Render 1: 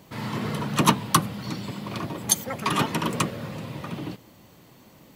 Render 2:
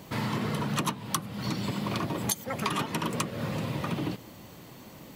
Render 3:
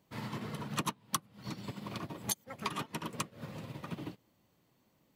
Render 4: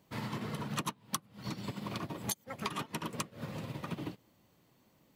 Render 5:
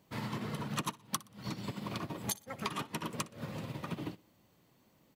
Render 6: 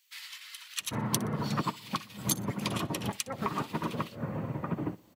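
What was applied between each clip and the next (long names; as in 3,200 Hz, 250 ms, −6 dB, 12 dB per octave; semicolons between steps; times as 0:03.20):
downward compressor 10 to 1, threshold −31 dBFS, peak gain reduction 19 dB; level +4.5 dB
expander for the loud parts 2.5 to 1, over −39 dBFS; level −3 dB
downward compressor 2 to 1, threshold −40 dBFS, peak gain reduction 7.5 dB; level +4 dB
repeating echo 61 ms, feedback 36%, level −21 dB
multiband delay without the direct sound highs, lows 800 ms, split 2,000 Hz; level +6.5 dB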